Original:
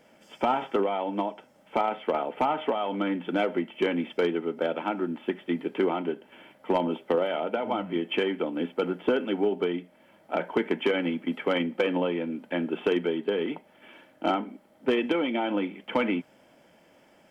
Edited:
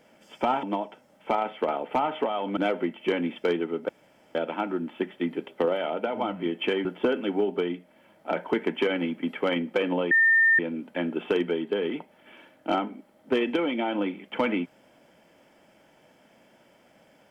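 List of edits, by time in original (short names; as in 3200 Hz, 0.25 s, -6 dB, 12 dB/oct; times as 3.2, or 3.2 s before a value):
0.63–1.09 cut
3.03–3.31 cut
4.63 insert room tone 0.46 s
5.76–6.98 cut
8.35–8.89 cut
12.15 add tone 1810 Hz -16 dBFS 0.48 s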